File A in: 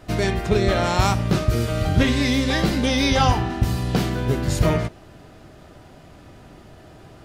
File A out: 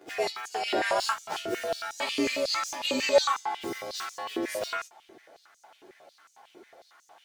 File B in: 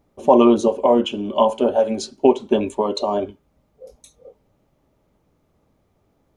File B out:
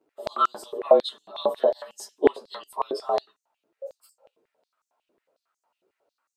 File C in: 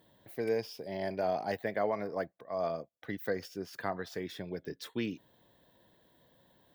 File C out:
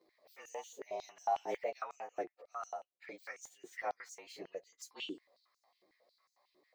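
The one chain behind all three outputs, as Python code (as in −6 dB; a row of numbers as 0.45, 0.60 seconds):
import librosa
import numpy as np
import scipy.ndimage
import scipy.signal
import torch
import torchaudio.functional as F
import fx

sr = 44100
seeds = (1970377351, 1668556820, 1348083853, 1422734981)

y = fx.partial_stretch(x, sr, pct=108)
y = fx.filter_held_highpass(y, sr, hz=11.0, low_hz=370.0, high_hz=6500.0)
y = y * 10.0 ** (-5.5 / 20.0)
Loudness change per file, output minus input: −8.5, −7.0, −7.0 LU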